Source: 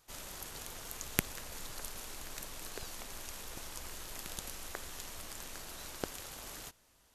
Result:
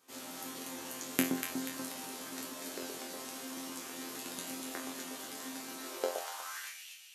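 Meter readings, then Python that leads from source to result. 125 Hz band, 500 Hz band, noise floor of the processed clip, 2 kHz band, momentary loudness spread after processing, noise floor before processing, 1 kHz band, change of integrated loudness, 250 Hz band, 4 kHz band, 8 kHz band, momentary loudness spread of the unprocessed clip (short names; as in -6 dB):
-5.0 dB, +7.0 dB, -50 dBFS, +2.5 dB, 8 LU, -68 dBFS, +4.5 dB, +3.0 dB, +10.5 dB, +2.0 dB, +1.5 dB, 7 LU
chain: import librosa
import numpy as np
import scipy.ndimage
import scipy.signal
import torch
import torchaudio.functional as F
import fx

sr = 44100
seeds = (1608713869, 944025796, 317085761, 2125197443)

y = fx.resonator_bank(x, sr, root=41, chord='fifth', decay_s=0.39)
y = fx.echo_alternate(y, sr, ms=121, hz=1200.0, feedback_pct=70, wet_db=-3.0)
y = fx.filter_sweep_highpass(y, sr, from_hz=260.0, to_hz=2700.0, start_s=5.77, end_s=6.86, q=3.2)
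y = y * 10.0 ** (13.0 / 20.0)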